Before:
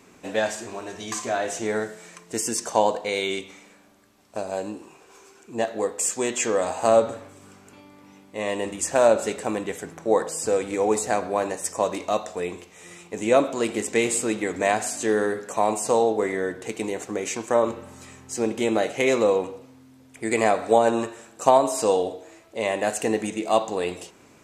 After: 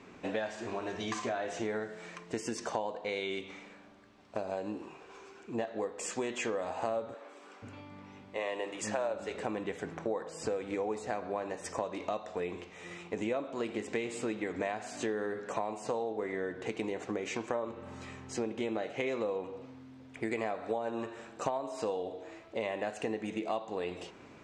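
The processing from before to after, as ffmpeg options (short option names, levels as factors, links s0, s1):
-filter_complex "[0:a]asettb=1/sr,asplit=3[s0][s1][s2];[s0]atrim=end=7.144[s3];[s1]atrim=start=7.14:end=9.35,asetpts=PTS-STARTPTS,afade=t=in:d=0.004:c=qsin,afade=t=out:st=2.206:d=0.004:c=qsin,acrossover=split=320[s4][s5];[s4]adelay=480[s6];[s6][s5]amix=inputs=2:normalize=0,atrim=end_sample=97461[s7];[s2]atrim=start=9.346[s8];[s3][s7]acrossfade=d=0.004:c1=hsin:c2=qsin[s9];[s9][s8]acrossfade=d=0.004:c1=qsin:c2=hsin,lowpass=3800,acompressor=threshold=0.0251:ratio=6"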